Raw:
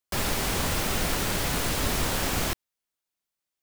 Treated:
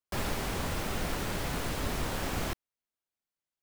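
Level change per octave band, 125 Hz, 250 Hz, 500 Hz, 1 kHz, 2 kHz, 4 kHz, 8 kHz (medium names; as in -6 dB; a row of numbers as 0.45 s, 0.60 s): -4.5 dB, -4.5 dB, -5.0 dB, -5.5 dB, -7.0 dB, -9.0 dB, -11.0 dB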